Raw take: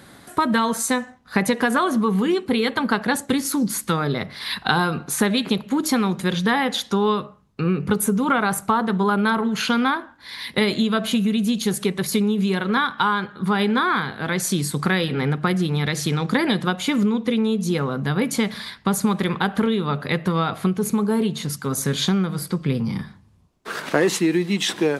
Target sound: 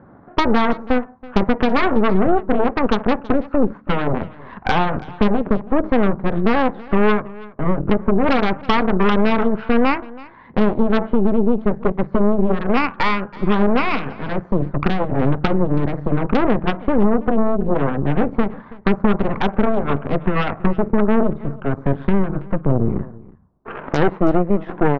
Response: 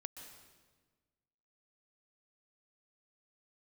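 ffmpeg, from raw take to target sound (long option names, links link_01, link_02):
-af "lowpass=frequency=1200:width=0.5412,lowpass=frequency=1200:width=1.3066,aeval=exprs='0.531*(cos(1*acos(clip(val(0)/0.531,-1,1)))-cos(1*PI/2))+0.0422*(cos(3*acos(clip(val(0)/0.531,-1,1)))-cos(3*PI/2))+0.106*(cos(8*acos(clip(val(0)/0.531,-1,1)))-cos(8*PI/2))':channel_layout=same,aecho=1:1:327:0.0891,alimiter=level_in=8.5dB:limit=-1dB:release=50:level=0:latency=1,volume=-4dB"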